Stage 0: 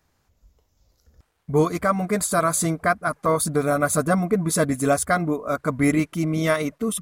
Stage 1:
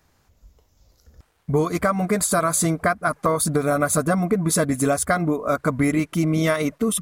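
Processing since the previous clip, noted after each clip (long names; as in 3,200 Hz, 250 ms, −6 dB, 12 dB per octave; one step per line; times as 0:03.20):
downward compressor, threshold −22 dBFS, peak gain reduction 8.5 dB
level +5.5 dB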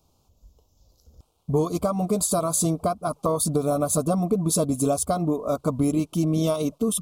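Butterworth band-reject 1,800 Hz, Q 0.93
level −2 dB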